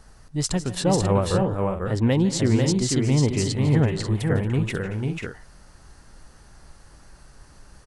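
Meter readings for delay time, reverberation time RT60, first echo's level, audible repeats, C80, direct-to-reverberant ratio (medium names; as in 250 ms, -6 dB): 151 ms, no reverb, -16.5 dB, 4, no reverb, no reverb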